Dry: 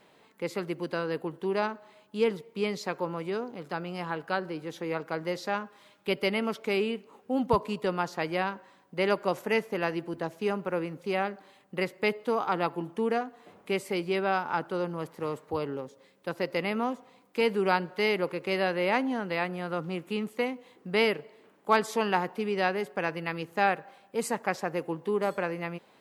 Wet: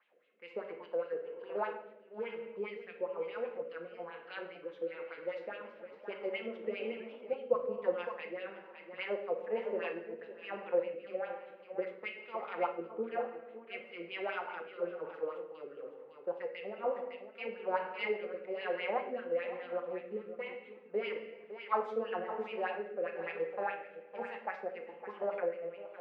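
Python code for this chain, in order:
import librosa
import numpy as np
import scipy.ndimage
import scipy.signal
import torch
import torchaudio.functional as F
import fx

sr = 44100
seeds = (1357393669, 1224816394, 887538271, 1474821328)

y = scipy.signal.sosfilt(scipy.signal.butter(2, 120.0, 'highpass', fs=sr, output='sos'), x)
y = fx.bass_treble(y, sr, bass_db=-6, treble_db=-15)
y = fx.small_body(y, sr, hz=(220.0, 500.0), ring_ms=90, db=8)
y = fx.wah_lfo(y, sr, hz=4.9, low_hz=440.0, high_hz=3000.0, q=3.6)
y = y + 10.0 ** (-12.0 / 20.0) * np.pad(y, (int(559 * sr / 1000.0), 0))[:len(y)]
y = fx.room_shoebox(y, sr, seeds[0], volume_m3=460.0, walls='mixed', distance_m=0.9)
y = fx.rotary(y, sr, hz=1.1)
y = fx.echo_warbled(y, sr, ms=325, feedback_pct=57, rate_hz=2.8, cents=209, wet_db=-16.5, at=(4.85, 7.34))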